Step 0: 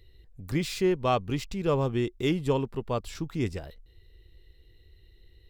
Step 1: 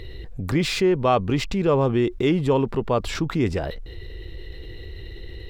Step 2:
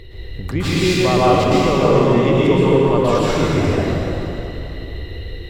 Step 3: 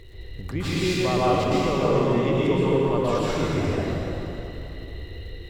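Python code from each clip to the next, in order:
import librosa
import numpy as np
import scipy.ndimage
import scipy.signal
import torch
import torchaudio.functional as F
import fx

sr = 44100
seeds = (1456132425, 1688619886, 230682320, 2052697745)

y1 = fx.lowpass(x, sr, hz=2100.0, slope=6)
y1 = fx.low_shelf(y1, sr, hz=150.0, db=-7.0)
y1 = fx.env_flatten(y1, sr, amount_pct=50)
y1 = y1 * librosa.db_to_amplitude(6.0)
y2 = fx.rev_plate(y1, sr, seeds[0], rt60_s=3.2, hf_ratio=0.75, predelay_ms=105, drr_db=-8.5)
y2 = y2 * librosa.db_to_amplitude(-1.5)
y3 = fx.dmg_crackle(y2, sr, seeds[1], per_s=200.0, level_db=-42.0)
y3 = y3 * librosa.db_to_amplitude(-7.5)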